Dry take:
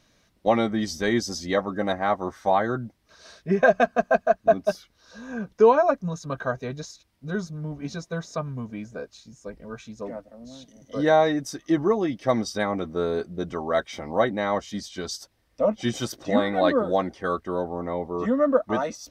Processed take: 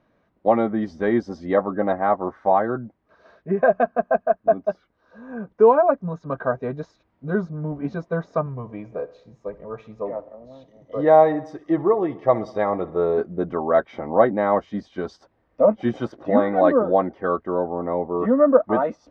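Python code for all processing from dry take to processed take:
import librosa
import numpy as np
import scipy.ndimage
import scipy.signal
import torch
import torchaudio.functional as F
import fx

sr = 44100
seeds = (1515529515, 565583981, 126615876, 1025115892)

y = fx.chain(x, sr, fx.peak_eq(hz=240.0, db=-12.0, octaves=0.5),
    fx.notch(hz=1500.0, q=5.8),
    fx.echo_feedback(ms=64, feedback_pct=59, wet_db=-18.5), at=(8.46, 13.18))
y = scipy.signal.sosfilt(scipy.signal.butter(2, 1200.0, 'lowpass', fs=sr, output='sos'), y)
y = fx.low_shelf(y, sr, hz=130.0, db=-11.5)
y = fx.rider(y, sr, range_db=4, speed_s=2.0)
y = y * 10.0 ** (4.5 / 20.0)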